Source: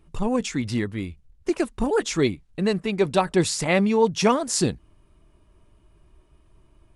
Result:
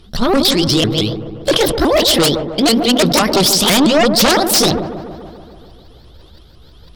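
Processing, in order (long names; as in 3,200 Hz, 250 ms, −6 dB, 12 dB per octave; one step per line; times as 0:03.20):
pitch shifter swept by a sawtooth +8.5 semitones, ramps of 168 ms
flat-topped bell 4,100 Hz +13.5 dB 1 octave
sine wavefolder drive 16 dB, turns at −1 dBFS
on a send: delay with a low-pass on its return 144 ms, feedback 67%, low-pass 1,000 Hz, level −9 dB
on the sum: level that may fall only so fast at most 58 dB per second
level −7 dB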